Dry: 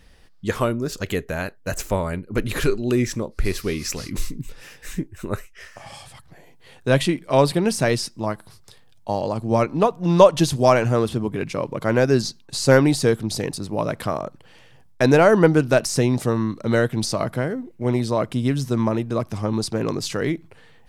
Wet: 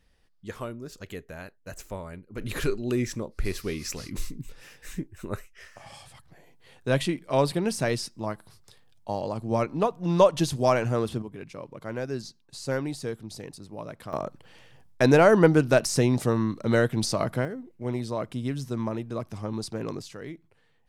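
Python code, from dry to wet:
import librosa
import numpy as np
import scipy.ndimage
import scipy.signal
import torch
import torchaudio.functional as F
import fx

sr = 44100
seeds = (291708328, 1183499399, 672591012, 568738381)

y = fx.gain(x, sr, db=fx.steps((0.0, -14.0), (2.41, -6.5), (11.22, -14.5), (14.13, -3.0), (17.45, -9.0), (20.02, -16.0)))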